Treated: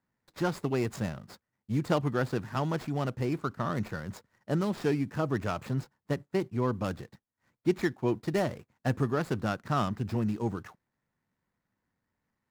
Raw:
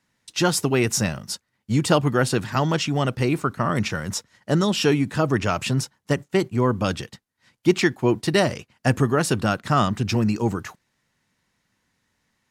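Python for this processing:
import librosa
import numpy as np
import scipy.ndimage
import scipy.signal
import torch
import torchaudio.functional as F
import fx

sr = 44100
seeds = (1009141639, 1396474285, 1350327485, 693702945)

y = scipy.signal.medfilt(x, 15)
y = F.gain(torch.from_numpy(y), -8.5).numpy()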